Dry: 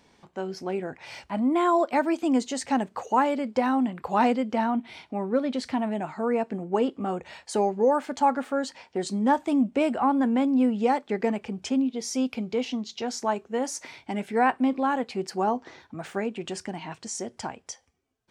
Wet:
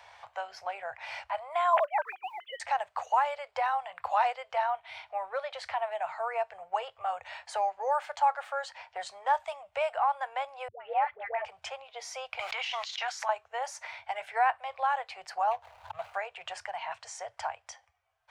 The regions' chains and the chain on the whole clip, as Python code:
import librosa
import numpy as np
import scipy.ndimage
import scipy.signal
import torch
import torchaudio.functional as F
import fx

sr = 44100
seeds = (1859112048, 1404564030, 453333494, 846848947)

y = fx.chain(x, sr, fx.sine_speech(),
    fx.highpass(hz=410.0, slope=24),
    fx.quant_companded(bits=8), at=(1.73, 2.6))
y = fx.chain(y, sr, fx.lowpass(hz=2500.0, slope=24),
    fx.dispersion(late='highs', ms=128.0, hz=510.0), at=(10.68, 11.45))
y = fx.chain(y, sr, fx.highpass(hz=1400.0, slope=12),
    fx.env_flatten(amount_pct=100), at=(12.39, 13.29))
y = fx.chain(y, sr, fx.median_filter(points=25),
    fx.peak_eq(hz=83.0, db=6.0, octaves=2.1),
    fx.pre_swell(db_per_s=130.0), at=(15.51, 16.14))
y = scipy.signal.sosfilt(scipy.signal.ellip(3, 1.0, 60, [100.0, 660.0], 'bandstop', fs=sr, output='sos'), y)
y = fx.bass_treble(y, sr, bass_db=-8, treble_db=-10)
y = fx.band_squash(y, sr, depth_pct=40)